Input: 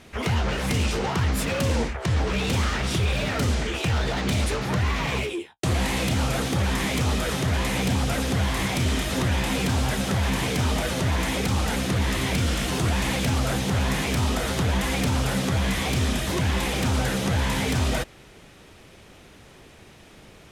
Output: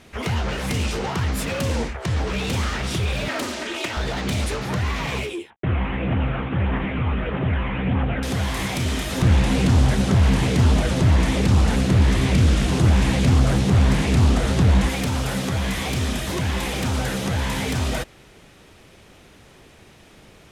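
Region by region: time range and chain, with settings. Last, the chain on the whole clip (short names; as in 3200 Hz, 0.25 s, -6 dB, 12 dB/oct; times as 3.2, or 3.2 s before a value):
3.28–3.97 HPF 270 Hz + comb 3.2 ms, depth 64% + Doppler distortion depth 0.34 ms
5.5–8.23 CVSD 16 kbps + phaser 1.6 Hz, delay 1 ms, feedback 33%
9.22–14.89 LPF 11000 Hz 24 dB/oct + low shelf 330 Hz +9.5 dB + Doppler distortion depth 0.39 ms
whole clip: dry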